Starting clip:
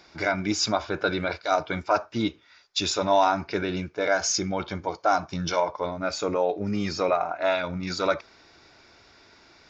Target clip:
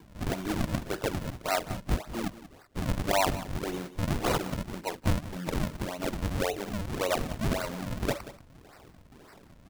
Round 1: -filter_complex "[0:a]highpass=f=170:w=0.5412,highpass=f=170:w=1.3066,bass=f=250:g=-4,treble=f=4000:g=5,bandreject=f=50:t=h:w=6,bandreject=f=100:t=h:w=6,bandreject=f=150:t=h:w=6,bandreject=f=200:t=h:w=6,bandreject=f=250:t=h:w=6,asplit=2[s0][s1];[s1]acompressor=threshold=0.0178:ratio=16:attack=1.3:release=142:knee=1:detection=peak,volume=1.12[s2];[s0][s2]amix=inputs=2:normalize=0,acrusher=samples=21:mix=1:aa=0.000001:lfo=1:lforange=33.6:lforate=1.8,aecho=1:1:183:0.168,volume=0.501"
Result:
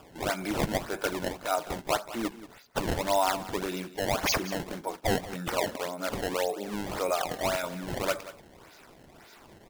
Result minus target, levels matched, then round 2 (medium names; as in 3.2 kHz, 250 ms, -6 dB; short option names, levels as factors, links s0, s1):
decimation with a swept rate: distortion -11 dB
-filter_complex "[0:a]highpass=f=170:w=0.5412,highpass=f=170:w=1.3066,bass=f=250:g=-4,treble=f=4000:g=5,bandreject=f=50:t=h:w=6,bandreject=f=100:t=h:w=6,bandreject=f=150:t=h:w=6,bandreject=f=200:t=h:w=6,bandreject=f=250:t=h:w=6,asplit=2[s0][s1];[s1]acompressor=threshold=0.0178:ratio=16:attack=1.3:release=142:knee=1:detection=peak,volume=1.12[s2];[s0][s2]amix=inputs=2:normalize=0,acrusher=samples=64:mix=1:aa=0.000001:lfo=1:lforange=102:lforate=1.8,aecho=1:1:183:0.168,volume=0.501"